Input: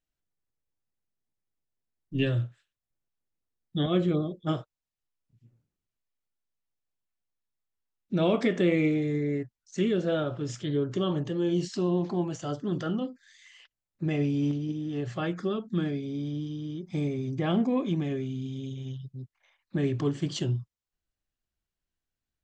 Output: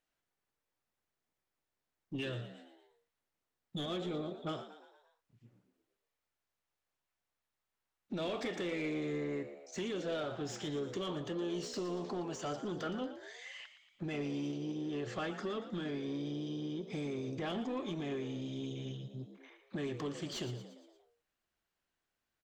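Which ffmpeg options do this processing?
-filter_complex "[0:a]acrossover=split=3800[a][b];[a]acompressor=threshold=-38dB:ratio=4[c];[b]crystalizer=i=0.5:c=0[d];[c][d]amix=inputs=2:normalize=0,asplit=2[e][f];[f]highpass=f=720:p=1,volume=20dB,asoftclip=type=tanh:threshold=-23dB[g];[e][g]amix=inputs=2:normalize=0,lowpass=f=1.7k:p=1,volume=-6dB,asplit=6[h][i][j][k][l][m];[i]adelay=116,afreqshift=70,volume=-12dB[n];[j]adelay=232,afreqshift=140,volume=-17.7dB[o];[k]adelay=348,afreqshift=210,volume=-23.4dB[p];[l]adelay=464,afreqshift=280,volume=-29dB[q];[m]adelay=580,afreqshift=350,volume=-34.7dB[r];[h][n][o][p][q][r]amix=inputs=6:normalize=0,volume=-4dB"

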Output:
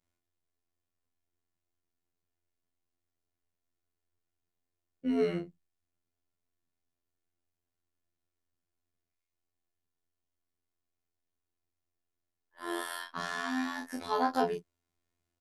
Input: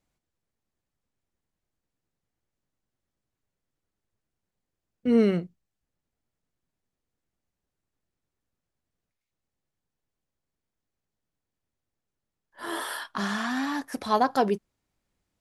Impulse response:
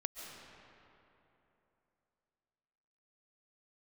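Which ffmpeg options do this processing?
-filter_complex "[0:a]afftfilt=real='hypot(re,im)*cos(PI*b)':imag='0':win_size=2048:overlap=0.75,asplit=2[a][b];[b]adelay=32,volume=-4dB[c];[a][c]amix=inputs=2:normalize=0,volume=-3.5dB"

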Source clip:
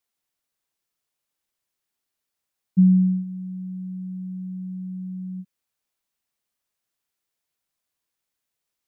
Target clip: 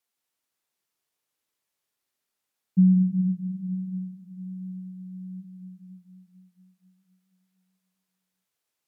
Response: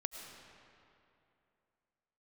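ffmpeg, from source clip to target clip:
-filter_complex "[0:a]lowshelf=f=71:g=-12[a];[1:a]atrim=start_sample=2205,asetrate=30870,aresample=44100[b];[a][b]afir=irnorm=-1:irlink=0"

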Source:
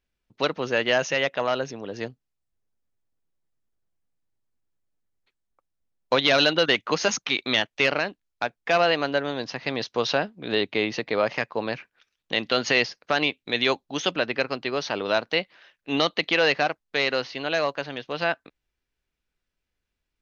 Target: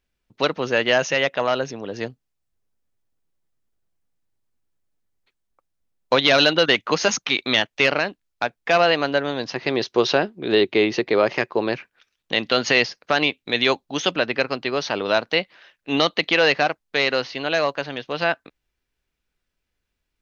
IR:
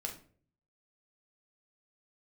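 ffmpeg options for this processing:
-filter_complex "[0:a]asettb=1/sr,asplit=3[a][b][c];[a]atrim=end=9.554[d];[b]atrim=start=9.55:end=11.75,asetpts=PTS-STARTPTS,afade=t=in:d=0.004:c=qsin,afade=t=out:st=2.196:d=0.004:c=qsin,equalizer=f=370:t=o:w=0.32:g=11.5[e];[c]atrim=start=11.746[f];[d][e]acrossfade=d=0.004:c1=hsin:c2=qsin[g];[g][f]acrossfade=d=0.004:c1=qsin:c2=hsin,volume=3.5dB"

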